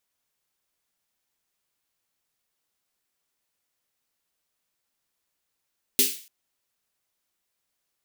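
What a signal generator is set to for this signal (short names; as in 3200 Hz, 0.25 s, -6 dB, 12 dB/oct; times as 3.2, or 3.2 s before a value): snare drum length 0.29 s, tones 260 Hz, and 400 Hz, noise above 2400 Hz, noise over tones 10.5 dB, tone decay 0.26 s, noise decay 0.43 s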